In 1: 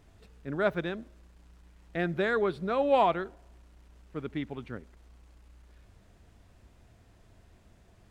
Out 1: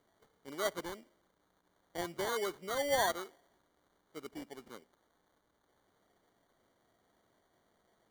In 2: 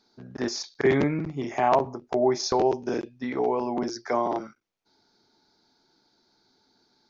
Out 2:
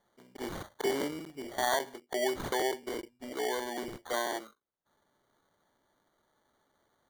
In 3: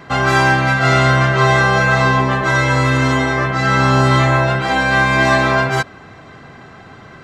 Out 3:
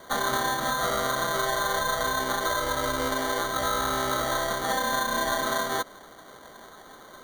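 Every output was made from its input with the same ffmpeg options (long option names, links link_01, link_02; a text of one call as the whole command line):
ffmpeg -i in.wav -af "highpass=350,acompressor=threshold=-17dB:ratio=6,acrusher=samples=17:mix=1:aa=0.000001,volume=-6.5dB" out.wav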